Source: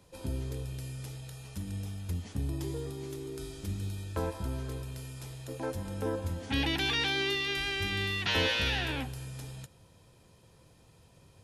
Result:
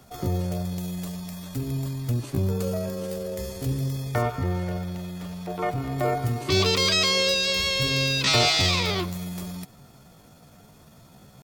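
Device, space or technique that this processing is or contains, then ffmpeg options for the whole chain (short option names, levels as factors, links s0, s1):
chipmunk voice: -filter_complex "[0:a]asetrate=60591,aresample=44100,atempo=0.727827,asettb=1/sr,asplit=3[s0][s1][s2];[s0]atrim=end=4.224[s3];[s1]atrim=start=4.22:end=5.98,asetpts=PTS-STARTPTS,afade=t=in:d=0.004:c=qsin,afade=t=out:st=1.756:d=0.004:c=qsin,acrossover=split=4100[s4][s5];[s5]acompressor=threshold=0.001:ratio=4:attack=1:release=60[s6];[s4][s6]amix=inputs=2:normalize=0[s7];[s2]atrim=start=5.976[s8];[s3][s7]acrossfade=d=0.004:c1=hsin:c2=qsin[s9];[s9][s8]acrossfade=d=0.004:c1=qsin:c2=hsin,volume=2.66"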